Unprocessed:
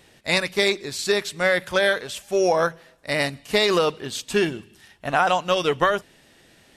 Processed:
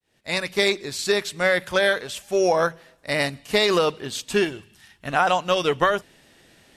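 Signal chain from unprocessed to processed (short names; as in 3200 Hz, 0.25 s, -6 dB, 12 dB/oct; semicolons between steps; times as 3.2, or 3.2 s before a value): opening faded in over 0.57 s; 4.43–5.15 bell 160 Hz -> 900 Hz -9 dB 1 oct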